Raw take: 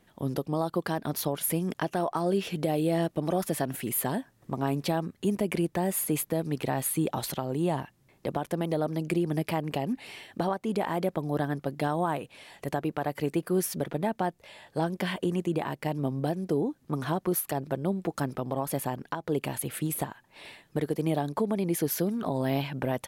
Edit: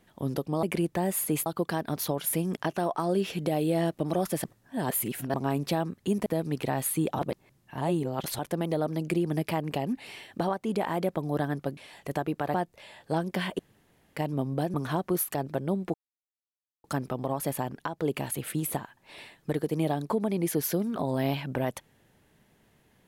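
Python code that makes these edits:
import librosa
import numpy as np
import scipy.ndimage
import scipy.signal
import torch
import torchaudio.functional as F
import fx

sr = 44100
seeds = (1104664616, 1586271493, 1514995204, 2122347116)

y = fx.edit(x, sr, fx.reverse_span(start_s=3.61, length_s=0.9),
    fx.move(start_s=5.43, length_s=0.83, to_s=0.63),
    fx.reverse_span(start_s=7.19, length_s=1.2),
    fx.cut(start_s=11.77, length_s=0.57),
    fx.cut(start_s=13.11, length_s=1.09),
    fx.room_tone_fill(start_s=15.25, length_s=0.57),
    fx.cut(start_s=16.4, length_s=0.51),
    fx.insert_silence(at_s=18.11, length_s=0.9), tone=tone)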